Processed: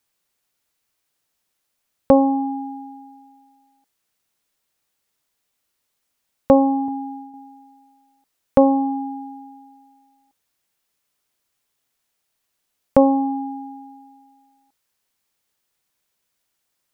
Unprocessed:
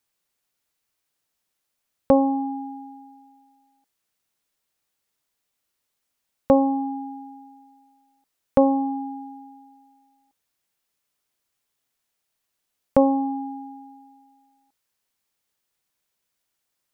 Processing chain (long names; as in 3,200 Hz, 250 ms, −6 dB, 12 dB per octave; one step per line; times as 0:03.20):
0:06.88–0:07.34: downward expander −37 dBFS
level +3.5 dB